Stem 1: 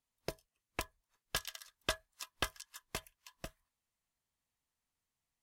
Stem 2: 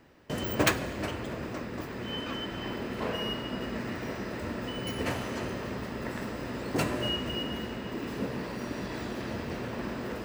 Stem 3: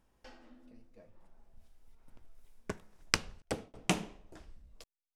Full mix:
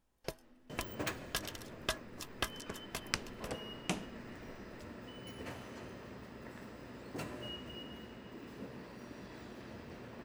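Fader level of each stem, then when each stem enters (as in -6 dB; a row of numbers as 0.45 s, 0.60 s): -1.0 dB, -14.0 dB, -6.5 dB; 0.00 s, 0.40 s, 0.00 s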